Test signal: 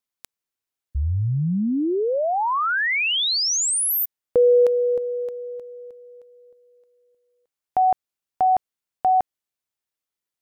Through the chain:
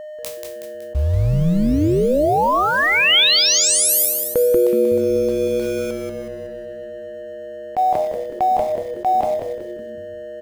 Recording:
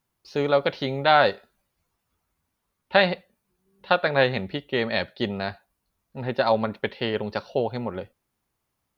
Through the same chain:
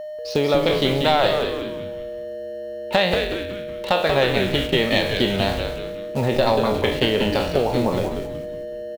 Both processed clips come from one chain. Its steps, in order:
peak hold with a decay on every bin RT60 0.40 s
in parallel at −7 dB: bit reduction 6 bits
on the sum: parametric band 1,500 Hz −8.5 dB 0.38 octaves
downward compressor 3 to 1, threshold −31 dBFS
steady tone 610 Hz −40 dBFS
leveller curve on the samples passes 1
dynamic equaliser 3,200 Hz, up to +4 dB, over −45 dBFS, Q 3
on a send: echo with shifted repeats 186 ms, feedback 44%, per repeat −130 Hz, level −5.5 dB
on the sum: level that may rise only so fast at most 520 dB per second
level +7 dB

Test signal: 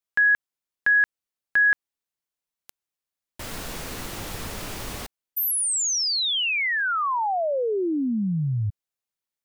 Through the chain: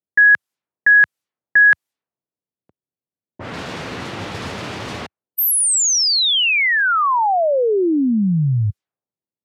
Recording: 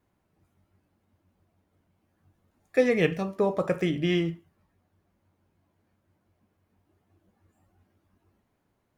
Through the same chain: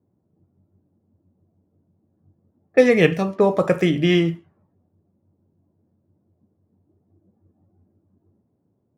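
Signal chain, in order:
low-pass that shuts in the quiet parts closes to 410 Hz, open at −25.5 dBFS
high-pass filter 87 Hz 24 dB per octave
level +8 dB

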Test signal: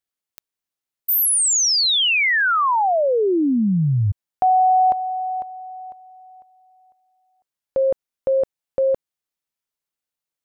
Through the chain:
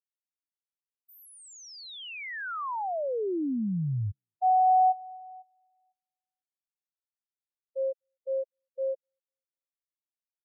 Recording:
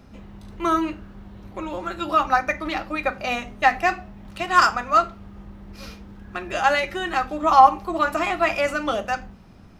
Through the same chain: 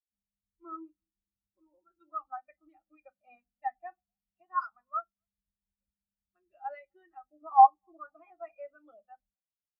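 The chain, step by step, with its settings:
feedback echo with a band-pass in the loop 248 ms, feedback 63%, band-pass 370 Hz, level −21 dB
every bin expanded away from the loudest bin 2.5 to 1
level −6 dB

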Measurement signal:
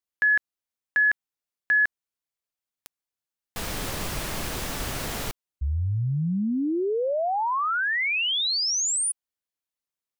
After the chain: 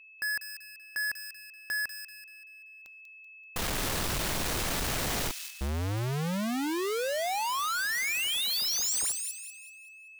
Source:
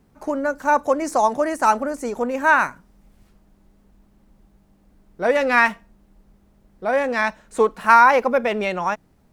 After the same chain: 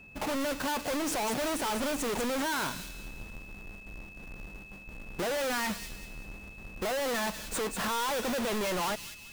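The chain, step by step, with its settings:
each half-wave held at its own peak
noise gate with hold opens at −47 dBFS, hold 34 ms, range −9 dB
in parallel at 0 dB: brickwall limiter −13 dBFS
on the sum: downward compressor, threshold −19 dBFS
steady tone 2,600 Hz −49 dBFS
gain into a clipping stage and back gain 29 dB
on a send: delay with a high-pass on its return 192 ms, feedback 39%, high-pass 3,100 Hz, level −5 dB
on the sum: level −1.5 dB

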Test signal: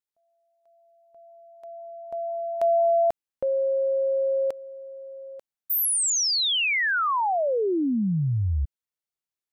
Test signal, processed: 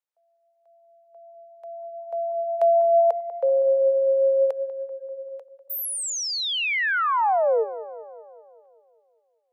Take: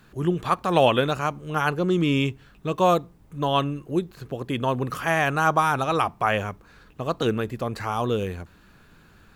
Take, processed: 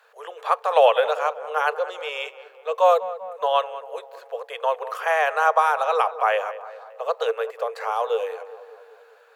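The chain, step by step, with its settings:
Chebyshev high-pass filter 450 Hz, order 8
high-shelf EQ 2,000 Hz −10 dB
tape delay 195 ms, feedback 65%, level −13 dB, low-pass 1,600 Hz
level +5 dB

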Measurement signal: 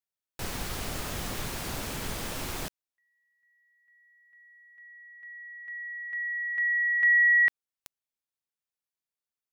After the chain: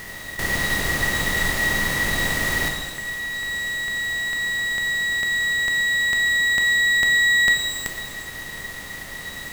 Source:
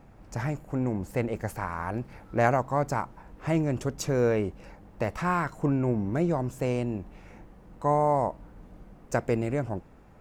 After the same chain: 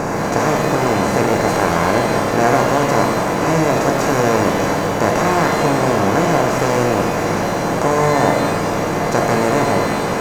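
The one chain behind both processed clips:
compressor on every frequency bin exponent 0.2
reverb with rising layers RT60 1.1 s, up +12 semitones, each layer −8 dB, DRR 2 dB
level +1 dB

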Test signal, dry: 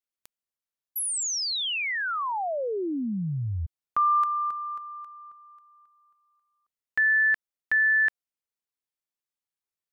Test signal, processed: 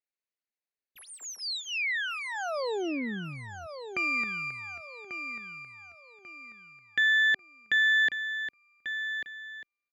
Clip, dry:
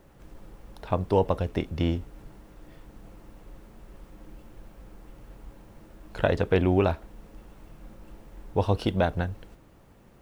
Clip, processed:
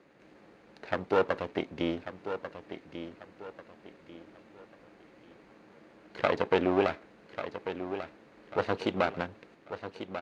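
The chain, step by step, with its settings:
lower of the sound and its delayed copy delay 0.45 ms
band-pass filter 270–4,100 Hz
repeating echo 1,142 ms, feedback 34%, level −10 dB

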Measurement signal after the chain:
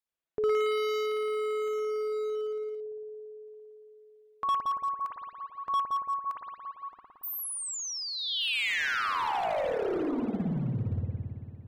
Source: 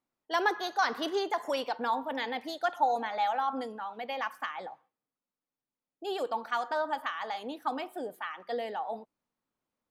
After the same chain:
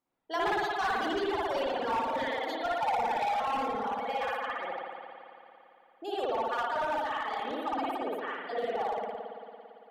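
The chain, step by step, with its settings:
in parallel at −0.5 dB: downward compressor 16 to 1, threshold −40 dBFS
on the sum: parametric band 640 Hz +2.5 dB 1.8 octaves
spring reverb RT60 3.3 s, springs 56 ms, chirp 30 ms, DRR −9 dB
hard clipping −15.5 dBFS
reverb reduction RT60 1.7 s
level −7.5 dB

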